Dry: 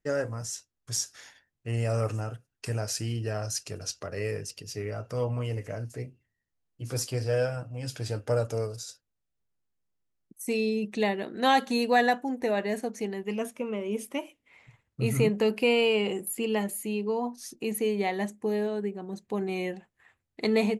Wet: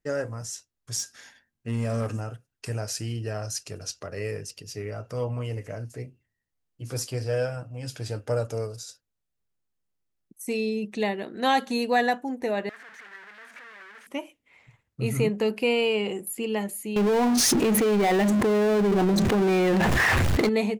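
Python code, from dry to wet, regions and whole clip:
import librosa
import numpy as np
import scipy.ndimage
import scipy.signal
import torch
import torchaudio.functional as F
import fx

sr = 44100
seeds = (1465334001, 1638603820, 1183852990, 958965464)

y = fx.chain(x, sr, fx.clip_hard(threshold_db=-23.5),
    fx.small_body(hz=(230.0, 1600.0), ring_ms=85, db=11), at=(0.99, 2.17))
y = fx.chain(y, sr, fx.clip_1bit(),
    fx.bandpass_q(hz=1700.0, q=3.9), at=(12.69, 14.07))
y = fx.chain(y, sr, fx.lowpass(hz=2400.0, slope=6),
    fx.power_curve(exponent=0.5),
    fx.env_flatten(amount_pct=100), at=(16.96, 20.49))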